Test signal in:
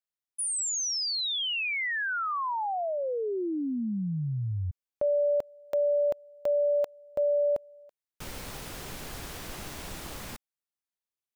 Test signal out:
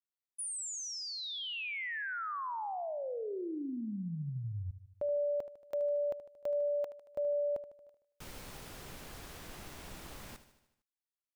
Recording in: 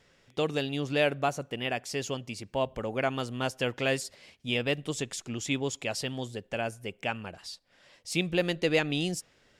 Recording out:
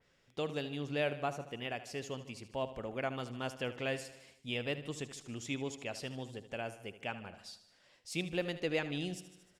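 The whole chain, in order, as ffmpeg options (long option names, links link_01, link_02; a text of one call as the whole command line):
ffmpeg -i in.wav -filter_complex "[0:a]asplit=2[link_01][link_02];[link_02]aecho=0:1:76|152|228|304|380|456:0.211|0.123|0.0711|0.0412|0.0239|0.0139[link_03];[link_01][link_03]amix=inputs=2:normalize=0,adynamicequalizer=threshold=0.00562:dfrequency=3400:dqfactor=0.7:tfrequency=3400:tqfactor=0.7:attack=5:release=100:ratio=0.375:range=2.5:mode=cutabove:tftype=highshelf,volume=-8dB" out.wav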